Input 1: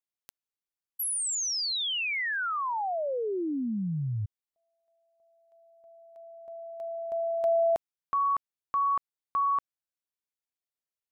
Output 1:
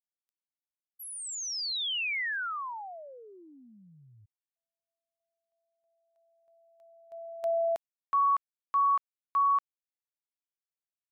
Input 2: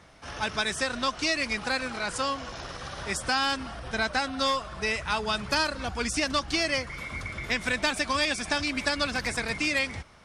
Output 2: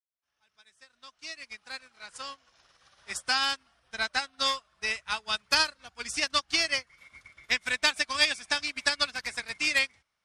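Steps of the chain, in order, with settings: fade-in on the opening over 2.64 s; tilt shelf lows -7 dB, about 880 Hz; upward expansion 2.5:1, over -38 dBFS

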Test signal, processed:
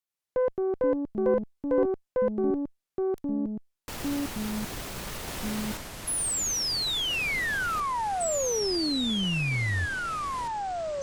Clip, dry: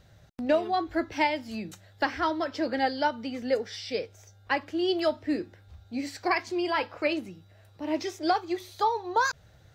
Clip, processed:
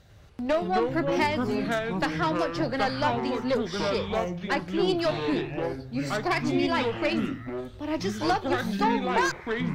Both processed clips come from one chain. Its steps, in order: Chebyshev shaper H 4 -14 dB, 5 -20 dB, 6 -22 dB, 8 -28 dB, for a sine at -13.5 dBFS; ever faster or slower copies 97 ms, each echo -5 st, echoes 3; trim -2 dB

